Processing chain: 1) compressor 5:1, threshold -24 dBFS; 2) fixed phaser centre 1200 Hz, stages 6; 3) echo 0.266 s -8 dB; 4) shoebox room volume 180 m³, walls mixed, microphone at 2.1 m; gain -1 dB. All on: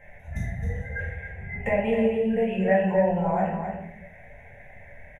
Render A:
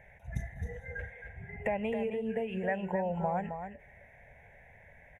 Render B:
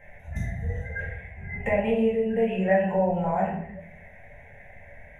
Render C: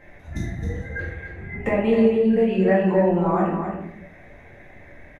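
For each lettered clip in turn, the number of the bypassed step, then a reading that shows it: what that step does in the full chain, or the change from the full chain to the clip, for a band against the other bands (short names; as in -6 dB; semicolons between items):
4, echo-to-direct 7.5 dB to -8.0 dB; 3, momentary loudness spread change +1 LU; 2, 250 Hz band +3.5 dB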